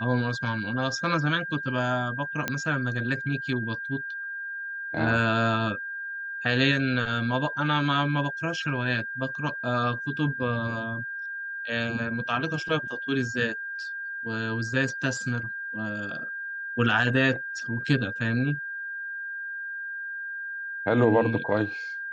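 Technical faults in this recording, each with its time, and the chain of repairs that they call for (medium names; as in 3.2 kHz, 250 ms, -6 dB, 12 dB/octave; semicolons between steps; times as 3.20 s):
whine 1.6 kHz -32 dBFS
2.48 s: pop -11 dBFS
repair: de-click; band-stop 1.6 kHz, Q 30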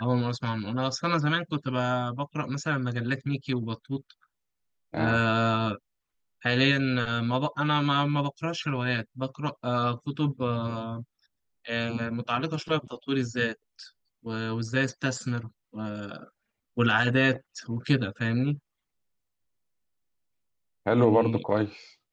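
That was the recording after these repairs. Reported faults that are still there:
nothing left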